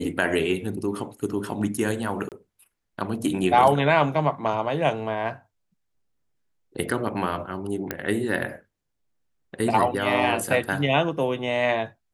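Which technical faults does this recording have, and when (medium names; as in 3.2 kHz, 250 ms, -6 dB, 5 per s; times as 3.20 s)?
2.29–2.32 s: dropout 28 ms
7.91 s: pop -11 dBFS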